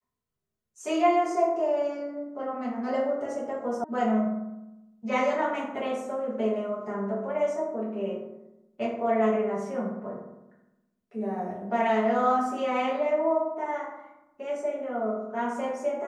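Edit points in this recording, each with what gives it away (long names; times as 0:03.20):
0:03.84: cut off before it has died away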